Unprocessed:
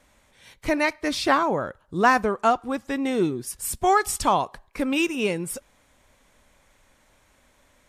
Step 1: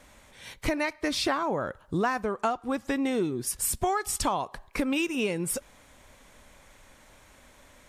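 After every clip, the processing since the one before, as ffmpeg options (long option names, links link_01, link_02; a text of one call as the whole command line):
ffmpeg -i in.wav -af "acompressor=threshold=-31dB:ratio=5,volume=5.5dB" out.wav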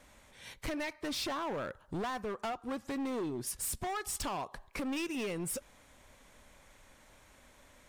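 ffmpeg -i in.wav -af "volume=28dB,asoftclip=hard,volume=-28dB,volume=-5dB" out.wav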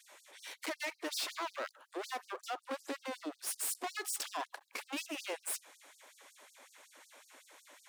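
ffmpeg -i in.wav -af "aeval=exprs='clip(val(0),-1,0.00224)':channel_layout=same,afftfilt=real='re*gte(b*sr/1024,240*pow(4500/240,0.5+0.5*sin(2*PI*5.4*pts/sr)))':imag='im*gte(b*sr/1024,240*pow(4500/240,0.5+0.5*sin(2*PI*5.4*pts/sr)))':win_size=1024:overlap=0.75,volume=4.5dB" out.wav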